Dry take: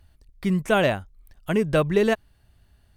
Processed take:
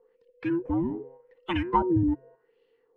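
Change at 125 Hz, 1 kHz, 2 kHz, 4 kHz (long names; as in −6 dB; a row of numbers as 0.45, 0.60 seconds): −5.5, +0.5, −12.5, −9.5 decibels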